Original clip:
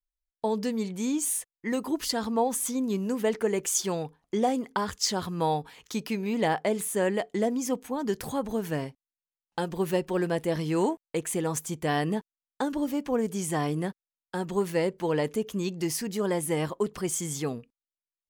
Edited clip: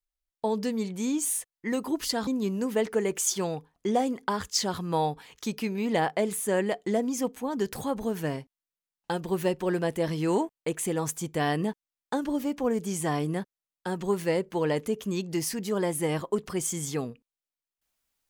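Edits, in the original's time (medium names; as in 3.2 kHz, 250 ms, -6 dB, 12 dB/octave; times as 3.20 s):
2.27–2.75 s: delete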